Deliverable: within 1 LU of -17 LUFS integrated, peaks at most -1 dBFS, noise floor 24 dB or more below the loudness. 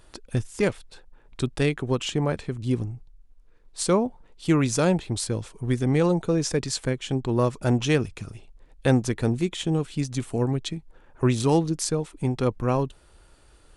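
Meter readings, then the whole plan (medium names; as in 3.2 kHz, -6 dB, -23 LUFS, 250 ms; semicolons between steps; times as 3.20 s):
loudness -25.5 LUFS; peak level -6.5 dBFS; loudness target -17.0 LUFS
-> trim +8.5 dB; peak limiter -1 dBFS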